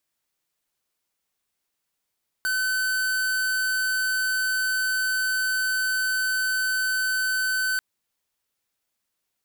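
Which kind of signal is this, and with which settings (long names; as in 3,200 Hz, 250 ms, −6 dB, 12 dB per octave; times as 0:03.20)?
tone square 1,520 Hz −24.5 dBFS 5.34 s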